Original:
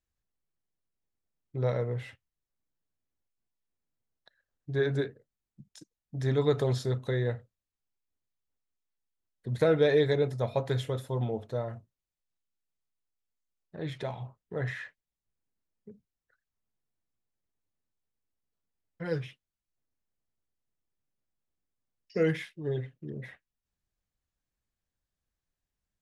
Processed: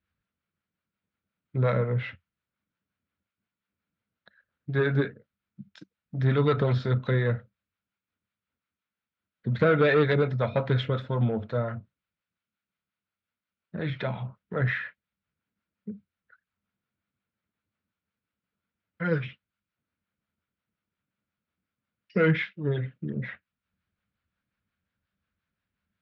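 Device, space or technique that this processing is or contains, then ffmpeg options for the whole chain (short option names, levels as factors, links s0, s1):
guitar amplifier with harmonic tremolo: -filter_complex "[0:a]acrossover=split=510[s0][s1];[s0]aeval=exprs='val(0)*(1-0.5/2+0.5/2*cos(2*PI*5.6*n/s))':c=same[s2];[s1]aeval=exprs='val(0)*(1-0.5/2-0.5/2*cos(2*PI*5.6*n/s))':c=same[s3];[s2][s3]amix=inputs=2:normalize=0,asoftclip=type=tanh:threshold=0.075,highpass=78,equalizer=f=87:t=q:w=4:g=6,equalizer=f=200:t=q:w=4:g=9,equalizer=f=390:t=q:w=4:g=-4,equalizer=f=780:t=q:w=4:g=-5,equalizer=f=1400:t=q:w=4:g=9,equalizer=f=2300:t=q:w=4:g=4,lowpass=f=3800:w=0.5412,lowpass=f=3800:w=1.3066,volume=2.51"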